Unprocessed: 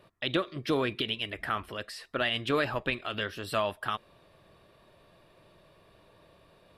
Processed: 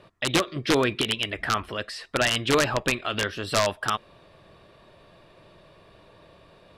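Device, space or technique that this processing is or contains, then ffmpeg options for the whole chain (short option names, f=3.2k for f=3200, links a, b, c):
overflowing digital effects unit: -af "aeval=exprs='(mod(8.41*val(0)+1,2)-1)/8.41':c=same,lowpass=8.2k,volume=6.5dB"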